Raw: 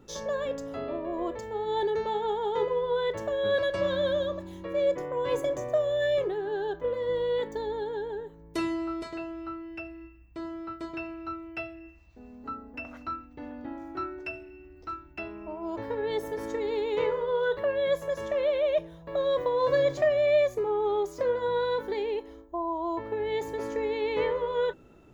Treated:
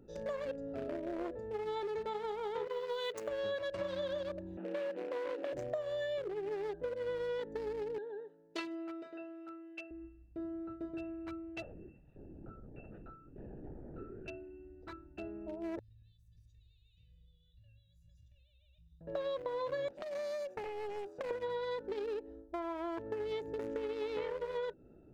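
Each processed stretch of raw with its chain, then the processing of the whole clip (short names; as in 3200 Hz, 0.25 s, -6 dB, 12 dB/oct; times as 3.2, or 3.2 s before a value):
2.67–3.28 tilt +4 dB/oct + small resonant body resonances 270/430/1100/3000 Hz, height 12 dB, ringing for 85 ms
4.57–5.53 delta modulation 16 kbps, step -32.5 dBFS + steep high-pass 180 Hz 96 dB/oct + compressor, threshold -26 dBFS
7.98–9.91 BPF 210–3700 Hz + tilt +4 dB/oct
11.62–14.28 LPC vocoder at 8 kHz whisper + compressor 2:1, threshold -43 dBFS + mismatched tape noise reduction encoder only
15.79–19.01 inverse Chebyshev band-stop 250–1500 Hz, stop band 50 dB + compressor, threshold -52 dBFS
19.88–21.31 HPF 420 Hz + compressor 16:1, threshold -29 dBFS + Doppler distortion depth 0.62 ms
whole clip: Wiener smoothing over 41 samples; low shelf 390 Hz -5.5 dB; compressor, threshold -37 dBFS; gain +1.5 dB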